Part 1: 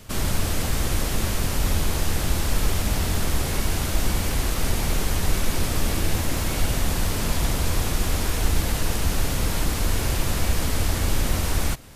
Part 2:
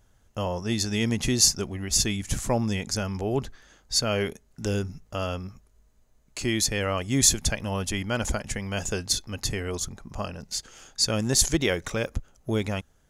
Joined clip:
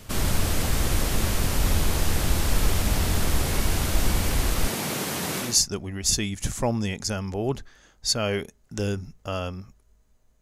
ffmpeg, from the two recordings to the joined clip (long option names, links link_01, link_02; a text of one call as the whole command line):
ffmpeg -i cue0.wav -i cue1.wav -filter_complex "[0:a]asettb=1/sr,asplit=3[link_01][link_02][link_03];[link_01]atrim=end=4.684[link_04];[link_02]atrim=start=4.68:end=5.6,asetpts=PTS-STARTPTS,afade=type=in:duration=0.004:curve=qsin,afade=type=out:start_time=0.916:duration=0.004:curve=qsin,highpass=frequency=140:width=0.5412,highpass=frequency=140:width=1.3066[link_05];[link_03]atrim=start=5.596[link_06];[link_04][link_05]acrossfade=duration=0.004:curve1=hsin:curve2=qsin[link_07];[link_07][link_06]acrossfade=duration=0.004:curve1=qsin:curve2=hsin,apad=whole_dur=10.41,atrim=end=10.41,atrim=end=5.6,asetpts=PTS-STARTPTS[link_08];[1:a]atrim=start=1.27:end=6.28,asetpts=PTS-STARTPTS[link_09];[link_08][link_09]acrossfade=duration=0.2:curve1=tri:curve2=tri" out.wav